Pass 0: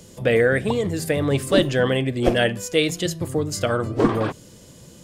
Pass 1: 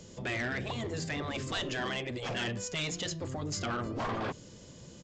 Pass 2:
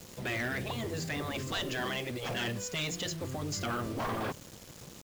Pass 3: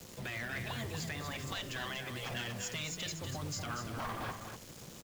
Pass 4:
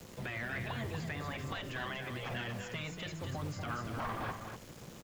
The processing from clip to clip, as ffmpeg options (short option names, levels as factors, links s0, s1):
-af "afftfilt=real='re*lt(hypot(re,im),0.398)':imag='im*lt(hypot(re,im),0.398)':win_size=1024:overlap=0.75,aresample=16000,asoftclip=type=tanh:threshold=0.0631,aresample=44100,volume=0.596"
-af "acrusher=bits=7:mix=0:aa=0.000001"
-filter_complex "[0:a]acrossover=split=210|640|6600[s0][s1][s2][s3];[s1]acompressor=threshold=0.00316:ratio=6[s4];[s0][s4][s2][s3]amix=inputs=4:normalize=0,alimiter=level_in=1.58:limit=0.0631:level=0:latency=1:release=178,volume=0.631,aecho=1:1:240:0.447,volume=0.841"
-filter_complex "[0:a]acrossover=split=2800[s0][s1];[s1]acompressor=threshold=0.00158:ratio=4:attack=1:release=60[s2];[s0][s2]amix=inputs=2:normalize=0,volume=1.19"